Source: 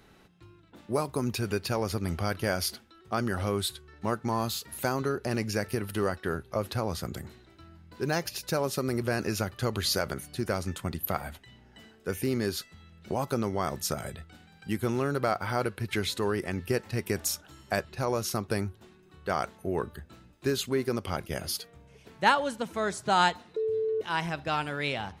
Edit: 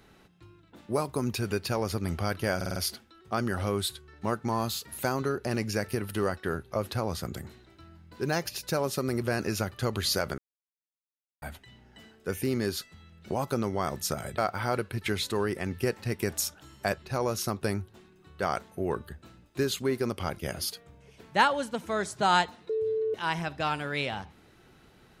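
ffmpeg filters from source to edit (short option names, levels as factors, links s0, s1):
-filter_complex "[0:a]asplit=8[s0][s1][s2][s3][s4][s5][s6][s7];[s0]atrim=end=2.612[s8];[s1]atrim=start=2.558:end=2.612[s9];[s2]atrim=start=2.558:end=2.612[s10];[s3]atrim=start=2.558:end=2.612[s11];[s4]atrim=start=2.558:end=10.18,asetpts=PTS-STARTPTS,afade=t=out:st=7.618:d=0.004:c=hsin[s12];[s5]atrim=start=10.18:end=11.22,asetpts=PTS-STARTPTS,volume=0[s13];[s6]atrim=start=11.22:end=14.182,asetpts=PTS-STARTPTS,afade=t=in:d=0.004:c=hsin[s14];[s7]atrim=start=15.248[s15];[s8][s9]acrossfade=d=0.004:c1=hsin:c2=hsin[s16];[s16][s10]acrossfade=d=0.004:c1=hsin:c2=hsin[s17];[s17][s11]acrossfade=d=0.004:c1=hsin:c2=hsin[s18];[s12][s13][s14]concat=n=3:v=0:a=1[s19];[s18][s19]acrossfade=d=0.004:c1=hsin:c2=hsin[s20];[s20][s15]acrossfade=d=0.004:c1=hsin:c2=hsin"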